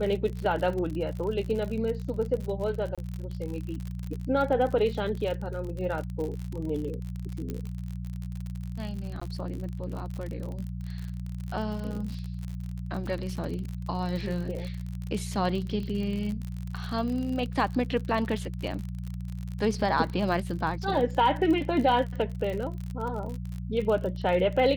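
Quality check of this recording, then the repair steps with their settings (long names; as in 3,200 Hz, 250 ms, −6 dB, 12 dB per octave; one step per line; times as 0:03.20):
surface crackle 54 per second −33 dBFS
mains hum 60 Hz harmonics 3 −35 dBFS
0:02.95–0:02.98: drop-out 26 ms
0:07.50: click −21 dBFS
0:09.20–0:09.21: drop-out 15 ms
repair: click removal
hum removal 60 Hz, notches 3
repair the gap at 0:02.95, 26 ms
repair the gap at 0:09.20, 15 ms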